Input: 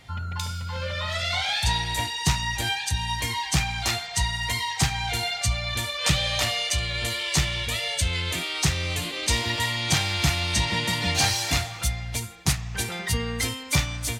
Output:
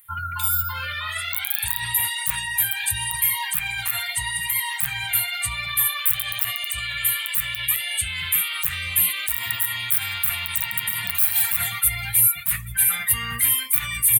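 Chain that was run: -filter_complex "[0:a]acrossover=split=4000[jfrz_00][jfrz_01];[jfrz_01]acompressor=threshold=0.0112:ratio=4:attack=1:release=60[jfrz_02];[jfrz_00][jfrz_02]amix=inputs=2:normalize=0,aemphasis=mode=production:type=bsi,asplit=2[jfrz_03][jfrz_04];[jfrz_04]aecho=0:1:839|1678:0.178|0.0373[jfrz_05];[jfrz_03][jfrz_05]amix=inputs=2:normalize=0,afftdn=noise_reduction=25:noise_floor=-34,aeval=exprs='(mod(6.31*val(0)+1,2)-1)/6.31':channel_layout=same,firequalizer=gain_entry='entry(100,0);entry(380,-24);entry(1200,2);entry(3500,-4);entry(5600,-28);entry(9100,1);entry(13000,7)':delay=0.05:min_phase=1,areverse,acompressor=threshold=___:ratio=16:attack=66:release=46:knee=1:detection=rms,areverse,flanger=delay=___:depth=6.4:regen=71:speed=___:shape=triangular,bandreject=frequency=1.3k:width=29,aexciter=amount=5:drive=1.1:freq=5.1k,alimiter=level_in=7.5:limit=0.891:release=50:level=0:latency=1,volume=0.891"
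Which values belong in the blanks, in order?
0.00794, 4.1, 0.87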